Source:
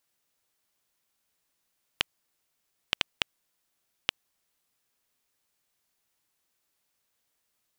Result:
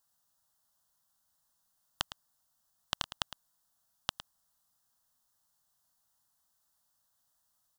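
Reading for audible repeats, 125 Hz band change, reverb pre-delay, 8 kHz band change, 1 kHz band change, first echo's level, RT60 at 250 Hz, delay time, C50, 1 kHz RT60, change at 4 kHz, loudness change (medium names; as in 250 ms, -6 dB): 1, +1.0 dB, no reverb, +1.0 dB, +1.5 dB, -12.5 dB, no reverb, 109 ms, no reverb, no reverb, -5.5 dB, -5.5 dB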